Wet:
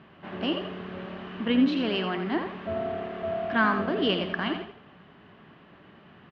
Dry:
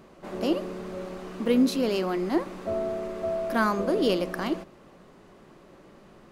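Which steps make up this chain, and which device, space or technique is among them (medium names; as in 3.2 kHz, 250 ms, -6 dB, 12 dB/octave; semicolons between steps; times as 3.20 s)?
frequency-shifting delay pedal into a guitar cabinet (frequency-shifting echo 84 ms, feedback 33%, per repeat +36 Hz, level -8 dB; cabinet simulation 80–3500 Hz, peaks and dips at 94 Hz +6 dB, 160 Hz +3 dB, 350 Hz -5 dB, 520 Hz -9 dB, 1.7 kHz +6 dB, 3 kHz +8 dB)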